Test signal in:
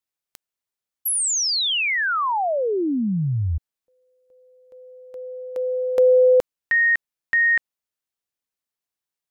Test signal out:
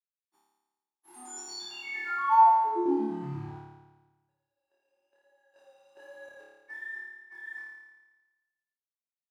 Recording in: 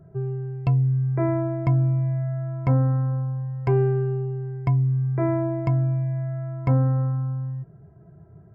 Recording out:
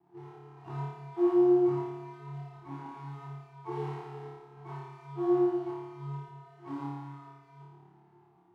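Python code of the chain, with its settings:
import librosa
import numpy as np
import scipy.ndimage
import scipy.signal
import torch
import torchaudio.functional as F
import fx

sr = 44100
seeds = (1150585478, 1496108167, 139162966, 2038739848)

p1 = fx.freq_snap(x, sr, grid_st=4)
p2 = fx.spec_gate(p1, sr, threshold_db=-15, keep='strong')
p3 = 10.0 ** (-18.5 / 20.0) * (np.abs((p2 / 10.0 ** (-18.5 / 20.0) + 3.0) % 4.0 - 2.0) - 1.0)
p4 = p2 + F.gain(torch.from_numpy(p3), -9.0).numpy()
p5 = fx.quant_companded(p4, sr, bits=4)
p6 = fx.double_bandpass(p5, sr, hz=540.0, octaves=1.3)
p7 = fx.chorus_voices(p6, sr, voices=2, hz=1.2, base_ms=23, depth_ms=3.0, mix_pct=40)
p8 = fx.tremolo_random(p7, sr, seeds[0], hz=3.5, depth_pct=55)
y = p8 + fx.room_flutter(p8, sr, wall_m=4.8, rt60_s=1.2, dry=0)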